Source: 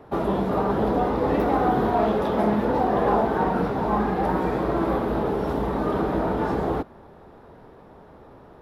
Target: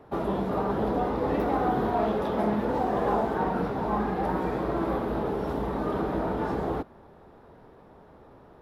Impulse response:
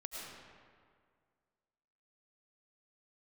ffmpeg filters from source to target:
-filter_complex "[0:a]asettb=1/sr,asplit=3[a][b][c];[a]atrim=end=2.684[d];[b]atrim=start=2.68:end=3.34,asetpts=PTS-STARTPTS,afade=t=in:d=0.004:c=qsin,afade=t=out:st=0.656:d=0.004:c=qsin,aeval=exprs='sgn(val(0))*max(abs(val(0))-0.00422,0)':c=same[e];[c]atrim=start=3.336[f];[d][e]acrossfade=d=0.004:c1=hsin:c2=qsin[g];[g][f]acrossfade=d=0.004:c1=qsin:c2=hsin,volume=-4.5dB"

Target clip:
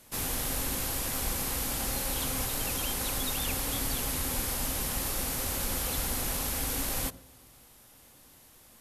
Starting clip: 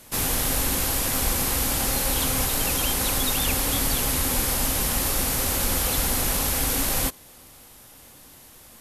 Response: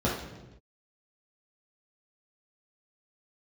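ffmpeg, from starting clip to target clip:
-filter_complex "[0:a]asplit=2[a][b];[1:a]atrim=start_sample=2205,adelay=80[c];[b][c]afir=irnorm=-1:irlink=0,volume=-32.5dB[d];[a][d]amix=inputs=2:normalize=0,volume=-8dB"

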